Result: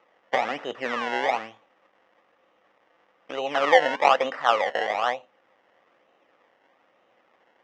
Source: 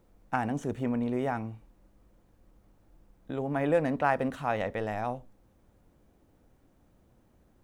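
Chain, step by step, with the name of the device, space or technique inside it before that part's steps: circuit-bent sampling toy (decimation with a swept rate 25×, swing 100% 1.1 Hz; speaker cabinet 520–5000 Hz, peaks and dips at 530 Hz +7 dB, 780 Hz +5 dB, 1200 Hz +8 dB, 1900 Hz +8 dB, 2900 Hz +4 dB, 4300 Hz -9 dB); gain +4.5 dB

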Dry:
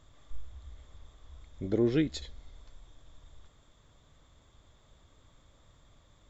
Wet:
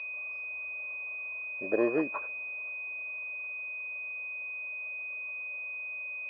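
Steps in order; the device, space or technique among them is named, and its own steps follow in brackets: toy sound module (decimation joined by straight lines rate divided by 8×; pulse-width modulation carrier 2500 Hz; speaker cabinet 520–3700 Hz, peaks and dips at 600 Hz +8 dB, 1100 Hz +9 dB, 2100 Hz -7 dB, 3100 Hz -7 dB); gain +6 dB

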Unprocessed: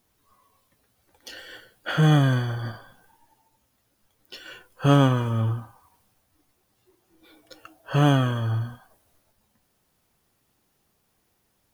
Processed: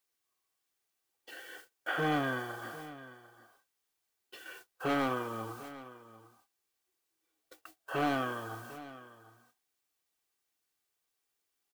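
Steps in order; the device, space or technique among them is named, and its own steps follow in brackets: aircraft radio (BPF 310–2500 Hz; hard clip -19.5 dBFS, distortion -9 dB; white noise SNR 18 dB; gate -47 dBFS, range -26 dB); low shelf 110 Hz -5.5 dB; comb 2.6 ms, depth 35%; echo 0.748 s -16.5 dB; gain -4.5 dB

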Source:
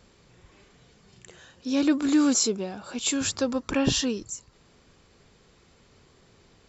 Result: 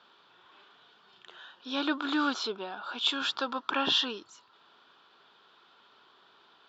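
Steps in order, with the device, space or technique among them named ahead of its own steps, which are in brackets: phone earpiece (speaker cabinet 500–4000 Hz, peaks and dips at 510 Hz -8 dB, 960 Hz +6 dB, 1400 Hz +9 dB, 2100 Hz -9 dB, 3400 Hz +9 dB); 2.31–2.83 LPF 5400 Hz 12 dB/oct

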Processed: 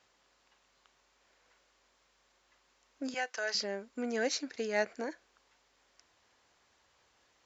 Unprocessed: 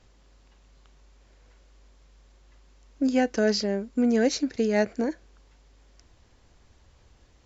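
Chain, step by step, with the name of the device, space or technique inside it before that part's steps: filter by subtraction (in parallel: LPF 1200 Hz 12 dB/oct + phase invert); 3.14–3.55 on the sum: HPF 750 Hz 12 dB/oct; gain -4.5 dB

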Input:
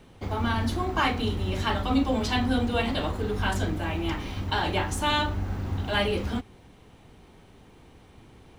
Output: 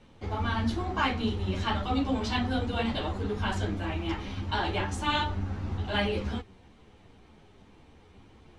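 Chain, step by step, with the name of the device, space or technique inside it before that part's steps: string-machine ensemble chorus (ensemble effect; LPF 7000 Hz 12 dB/oct)

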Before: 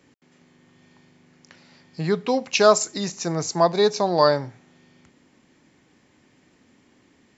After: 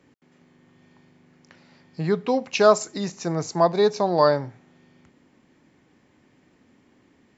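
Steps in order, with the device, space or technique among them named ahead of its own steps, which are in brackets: behind a face mask (high shelf 2900 Hz -8 dB)

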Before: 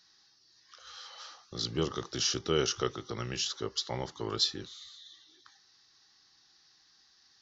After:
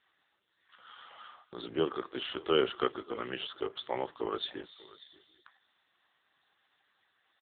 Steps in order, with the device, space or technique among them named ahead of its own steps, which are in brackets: satellite phone (BPF 310–3300 Hz; echo 0.584 s -20 dB; gain +4.5 dB; AMR-NB 5.9 kbps 8000 Hz)

